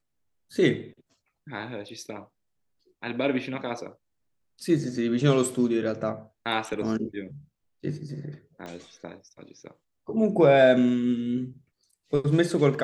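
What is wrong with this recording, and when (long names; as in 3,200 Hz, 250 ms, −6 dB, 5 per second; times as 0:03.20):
0:08.66: click −26 dBFS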